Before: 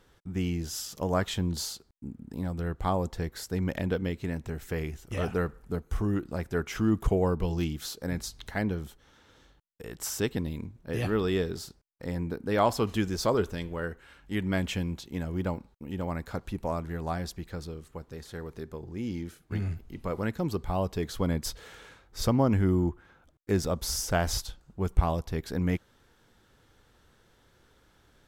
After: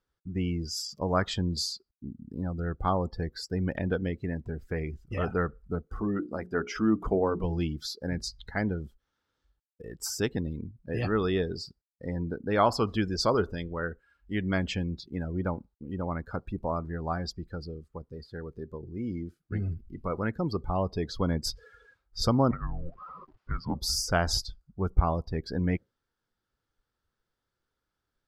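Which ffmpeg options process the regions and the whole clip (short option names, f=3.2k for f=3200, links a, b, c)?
-filter_complex "[0:a]asettb=1/sr,asplit=3[a][b][c];[a]atrim=end=5.874[d];[b]atrim=start=5.87:end=7.44,asetpts=PTS-STARTPTS,afade=t=in:d=0.004:c=qsin,afade=t=out:st=1.566:d=0.004:c=qsin,lowshelf=f=170:t=q:w=1.5:g=-7,bandreject=f=60:t=h:w=6,bandreject=f=120:t=h:w=6,bandreject=f=180:t=h:w=6,bandreject=f=240:t=h:w=6,bandreject=f=300:t=h:w=6,bandreject=f=360:t=h:w=6,bandreject=f=420:t=h:w=6,bandreject=f=480:t=h:w=6[e];[c]atrim=start=7.436[f];[d][e]acrossfade=d=0.004:c1=hsin:c2=qsin[g];[g][f]acrossfade=d=0.004:c1=qsin:c2=hsin,asettb=1/sr,asplit=3[h][i][j];[h]atrim=end=22.514[k];[i]atrim=start=22.51:end=23.75,asetpts=PTS-STARTPTS,afade=t=in:d=0.004:c=qsin,afade=t=out:st=1.236:d=0.004:c=qsin,aeval=exprs='val(0)+0.5*0.0119*sgn(val(0))':c=same,highpass=420,lowpass=2.6k,afreqshift=-340[l];[j]atrim=start=23.746[m];[k][l]acrossfade=d=0.004:c1=hsin:c2=qsin[n];[n][m]acrossfade=d=0.004:c1=qsin:c2=hsin,equalizer=f=4.8k:w=5.3:g=7.5,afftdn=nr=23:nf=-41,equalizer=f=1.3k:w=2.6:g=5"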